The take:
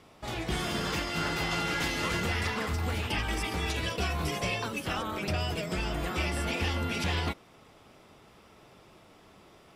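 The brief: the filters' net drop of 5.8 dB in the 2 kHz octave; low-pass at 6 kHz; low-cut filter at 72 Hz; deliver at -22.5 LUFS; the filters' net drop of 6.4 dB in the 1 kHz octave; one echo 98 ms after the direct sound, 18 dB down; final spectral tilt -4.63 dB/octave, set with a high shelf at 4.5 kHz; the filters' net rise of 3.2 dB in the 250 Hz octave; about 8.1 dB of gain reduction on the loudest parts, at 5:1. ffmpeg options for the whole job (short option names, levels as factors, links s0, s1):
-af "highpass=72,lowpass=6000,equalizer=f=250:t=o:g=5,equalizer=f=1000:t=o:g=-7.5,equalizer=f=2000:t=o:g=-7.5,highshelf=f=4500:g=7.5,acompressor=threshold=0.0158:ratio=5,aecho=1:1:98:0.126,volume=6.68"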